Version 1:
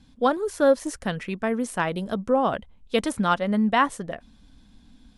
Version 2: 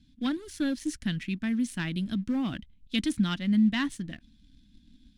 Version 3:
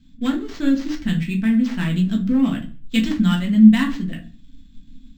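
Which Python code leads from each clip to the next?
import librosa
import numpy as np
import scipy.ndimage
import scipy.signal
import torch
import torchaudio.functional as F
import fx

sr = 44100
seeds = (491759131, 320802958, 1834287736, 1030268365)

y1 = fx.leveller(x, sr, passes=1)
y1 = fx.curve_eq(y1, sr, hz=(310.0, 450.0, 1200.0, 1700.0, 3600.0, 8800.0), db=(0, -24, -17, -6, 1, -6))
y1 = F.gain(torch.from_numpy(y1), -3.5).numpy()
y2 = fx.echo_feedback(y1, sr, ms=66, feedback_pct=47, wet_db=-21.5)
y2 = fx.room_shoebox(y2, sr, seeds[0], volume_m3=130.0, walls='furnished', distance_m=1.6)
y2 = np.interp(np.arange(len(y2)), np.arange(len(y2))[::4], y2[::4])
y2 = F.gain(torch.from_numpy(y2), 4.0).numpy()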